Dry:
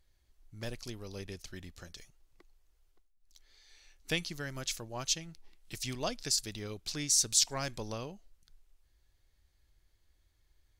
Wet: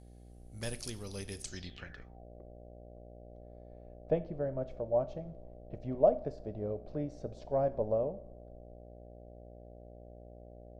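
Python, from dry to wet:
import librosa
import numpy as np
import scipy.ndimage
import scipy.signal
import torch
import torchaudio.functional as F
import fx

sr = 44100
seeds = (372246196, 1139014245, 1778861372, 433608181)

y = fx.rev_double_slope(x, sr, seeds[0], early_s=0.52, late_s=1.6, knee_db=-16, drr_db=11.5)
y = fx.dmg_buzz(y, sr, base_hz=60.0, harmonics=13, level_db=-54.0, tilt_db=-6, odd_only=False)
y = fx.filter_sweep_lowpass(y, sr, from_hz=10000.0, to_hz=610.0, start_s=1.4, end_s=2.25, q=6.5)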